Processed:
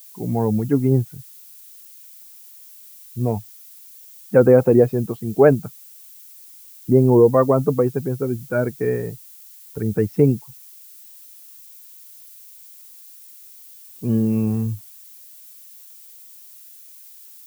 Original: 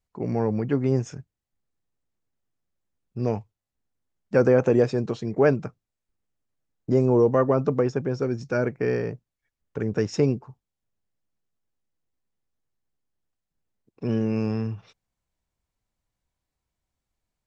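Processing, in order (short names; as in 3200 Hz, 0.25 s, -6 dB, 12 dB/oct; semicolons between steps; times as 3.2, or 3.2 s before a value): per-bin expansion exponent 1.5; LPF 1400 Hz 12 dB/oct; added noise violet -52 dBFS; gain +8 dB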